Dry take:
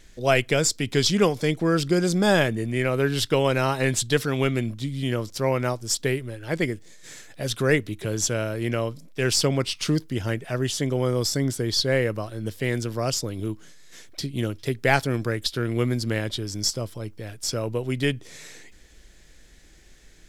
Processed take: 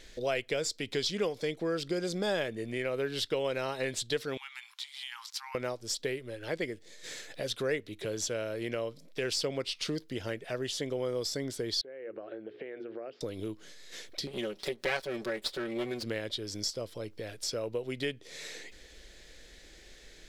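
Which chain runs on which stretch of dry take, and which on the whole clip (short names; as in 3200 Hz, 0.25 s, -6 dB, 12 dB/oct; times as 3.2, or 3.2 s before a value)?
4.37–5.55 compressor 10:1, threshold -26 dBFS + brick-wall FIR high-pass 790 Hz
11.81–13.21 notches 60/120/180/240/300/360/420 Hz + compressor 16:1, threshold -34 dBFS + speaker cabinet 290–2300 Hz, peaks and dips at 350 Hz +5 dB, 1000 Hz -9 dB, 2000 Hz -4 dB
14.27–16.03 minimum comb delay 5.3 ms + low shelf 180 Hz -7 dB + upward compressor, threshold -29 dBFS
whole clip: graphic EQ 125/500/2000/4000 Hz -4/+9/+4/+8 dB; compressor 2:1, threshold -36 dBFS; gain -3.5 dB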